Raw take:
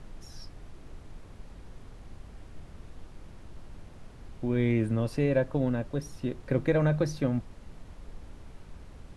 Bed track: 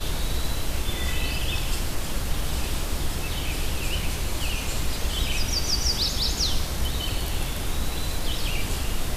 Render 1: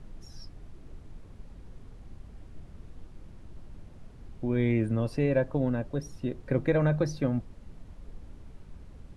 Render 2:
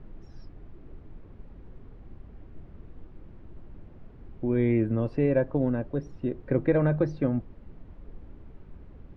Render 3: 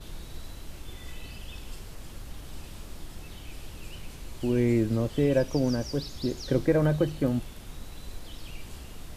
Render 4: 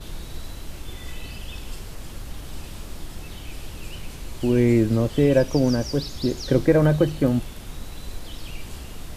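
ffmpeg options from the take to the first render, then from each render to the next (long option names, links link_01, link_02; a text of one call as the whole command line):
ffmpeg -i in.wav -af "afftdn=noise_reduction=6:noise_floor=-49" out.wav
ffmpeg -i in.wav -af "lowpass=2400,equalizer=frequency=350:width=1.6:gain=4.5" out.wav
ffmpeg -i in.wav -i bed.wav -filter_complex "[1:a]volume=-16.5dB[link_01];[0:a][link_01]amix=inputs=2:normalize=0" out.wav
ffmpeg -i in.wav -af "volume=6dB" out.wav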